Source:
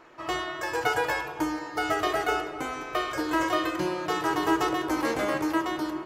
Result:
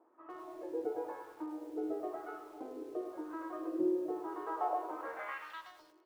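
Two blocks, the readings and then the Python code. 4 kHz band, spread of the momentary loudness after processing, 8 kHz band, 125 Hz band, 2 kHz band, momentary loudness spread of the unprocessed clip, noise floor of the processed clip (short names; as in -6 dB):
under -25 dB, 13 LU, under -25 dB, under -25 dB, -20.0 dB, 6 LU, -64 dBFS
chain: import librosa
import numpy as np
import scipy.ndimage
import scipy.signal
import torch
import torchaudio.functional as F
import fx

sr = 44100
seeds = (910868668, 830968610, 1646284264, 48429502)

p1 = fx.wah_lfo(x, sr, hz=0.96, low_hz=430.0, high_hz=1300.0, q=2.2)
p2 = 10.0 ** (-28.5 / 20.0) * np.tanh(p1 / 10.0 ** (-28.5 / 20.0))
p3 = p1 + F.gain(torch.from_numpy(p2), -9.0).numpy()
p4 = fx.filter_sweep_bandpass(p3, sr, from_hz=300.0, to_hz=5100.0, start_s=4.26, end_s=5.74, q=2.9)
p5 = fx.echo_crushed(p4, sr, ms=102, feedback_pct=55, bits=10, wet_db=-10)
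y = F.gain(torch.from_numpy(p5), 2.0).numpy()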